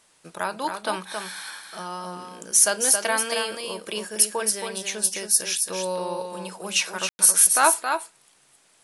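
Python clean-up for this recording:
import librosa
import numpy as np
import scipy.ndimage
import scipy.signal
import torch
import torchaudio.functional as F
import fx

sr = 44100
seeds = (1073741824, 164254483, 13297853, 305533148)

y = fx.fix_ambience(x, sr, seeds[0], print_start_s=8.3, print_end_s=8.8, start_s=7.09, end_s=7.19)
y = fx.fix_echo_inverse(y, sr, delay_ms=272, level_db=-6.0)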